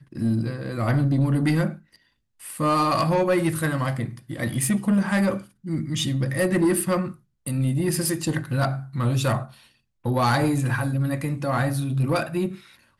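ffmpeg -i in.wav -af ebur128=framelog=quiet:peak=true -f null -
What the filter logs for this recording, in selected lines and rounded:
Integrated loudness:
  I:         -23.9 LUFS
  Threshold: -34.3 LUFS
Loudness range:
  LRA:         1.6 LU
  Threshold: -44.2 LUFS
  LRA low:   -24.8 LUFS
  LRA high:  -23.2 LUFS
True peak:
  Peak:      -13.5 dBFS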